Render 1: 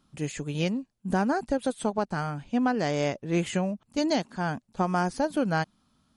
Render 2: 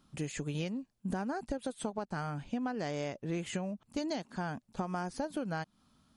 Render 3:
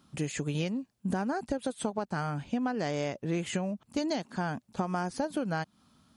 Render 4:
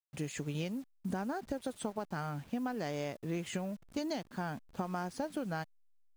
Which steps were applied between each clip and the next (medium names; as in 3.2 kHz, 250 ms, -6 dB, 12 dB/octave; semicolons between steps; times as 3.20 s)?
compression 6:1, threshold -33 dBFS, peak gain reduction 12 dB
high-pass 61 Hz; trim +4.5 dB
send-on-delta sampling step -48 dBFS; trim -5.5 dB